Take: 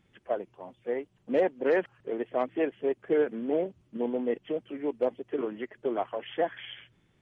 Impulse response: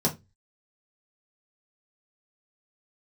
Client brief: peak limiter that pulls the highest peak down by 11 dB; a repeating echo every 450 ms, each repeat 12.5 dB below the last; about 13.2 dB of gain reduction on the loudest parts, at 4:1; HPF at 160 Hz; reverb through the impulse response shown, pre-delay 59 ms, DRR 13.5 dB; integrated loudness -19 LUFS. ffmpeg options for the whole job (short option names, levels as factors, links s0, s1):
-filter_complex "[0:a]highpass=160,acompressor=threshold=0.0141:ratio=4,alimiter=level_in=4.22:limit=0.0631:level=0:latency=1,volume=0.237,aecho=1:1:450|900|1350:0.237|0.0569|0.0137,asplit=2[s0][s1];[1:a]atrim=start_sample=2205,adelay=59[s2];[s1][s2]afir=irnorm=-1:irlink=0,volume=0.0668[s3];[s0][s3]amix=inputs=2:normalize=0,volume=21.1"